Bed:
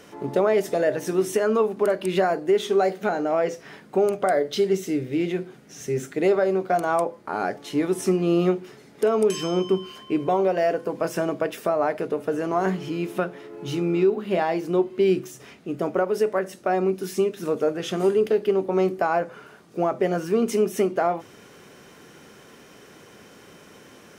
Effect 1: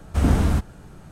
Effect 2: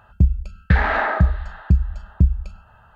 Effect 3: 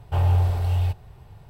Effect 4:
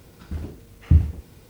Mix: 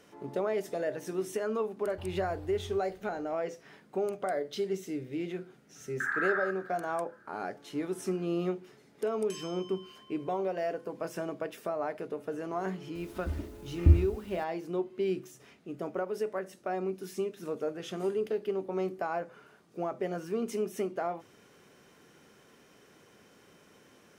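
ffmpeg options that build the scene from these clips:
-filter_complex "[0:a]volume=0.282[s0];[3:a]acompressor=threshold=0.0708:ratio=6:attack=3.2:release=140:knee=1:detection=peak[s1];[2:a]asuperpass=centerf=1500:order=4:qfactor=3.6[s2];[4:a]aecho=1:1:3.3:0.76[s3];[s1]atrim=end=1.49,asetpts=PTS-STARTPTS,volume=0.126,afade=t=in:d=0.004:c=hsin,afade=t=out:st=1.486:d=0.004:c=hsin,adelay=1860[s4];[s2]atrim=end=2.95,asetpts=PTS-STARTPTS,volume=0.531,afade=t=in:d=0.004:c=hsin,afade=t=out:st=2.946:d=0.004:c=hsin,adelay=5300[s5];[s3]atrim=end=1.49,asetpts=PTS-STARTPTS,volume=0.531,afade=t=in:d=0.004:c=hsin,afade=t=out:st=1.486:d=0.004:c=hsin,adelay=12950[s6];[s0][s4][s5][s6]amix=inputs=4:normalize=0"

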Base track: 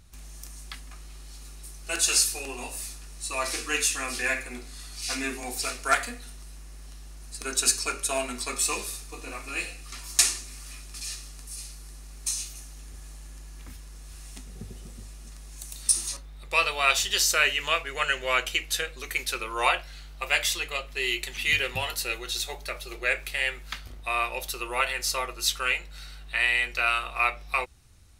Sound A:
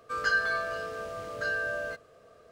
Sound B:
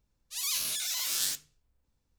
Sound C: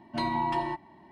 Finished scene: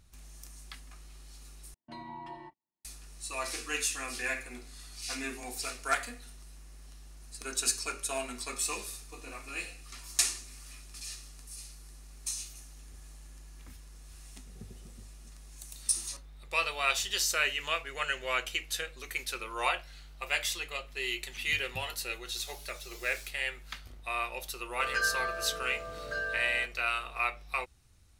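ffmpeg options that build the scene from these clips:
-filter_complex "[0:a]volume=0.473[s0];[3:a]agate=range=0.0355:threshold=0.00631:ratio=16:release=100:detection=peak[s1];[2:a]asplit=2[s2][s3];[s3]adelay=2.7,afreqshift=1.3[s4];[s2][s4]amix=inputs=2:normalize=1[s5];[s0]asplit=2[s6][s7];[s6]atrim=end=1.744[s8];[s1]atrim=end=1.11,asetpts=PTS-STARTPTS,volume=0.168[s9];[s7]atrim=start=2.846[s10];[s5]atrim=end=2.18,asetpts=PTS-STARTPTS,volume=0.158,afade=t=in:d=0.004:c=hsin,afade=t=out:st=2.176:d=0.004:c=hsin,adelay=21940[s11];[1:a]atrim=end=2.51,asetpts=PTS-STARTPTS,volume=0.631,afade=t=in:d=0.004:c=hsin,afade=t=out:st=2.506:d=0.004:c=hsin,adelay=24700[s12];[s8][s9]acrossfade=d=0.004:c1=hsin:c2=hsin[s13];[s13][s10]acrossfade=d=0.004:c1=hsin:c2=hsin[s14];[s14][s11][s12]amix=inputs=3:normalize=0"

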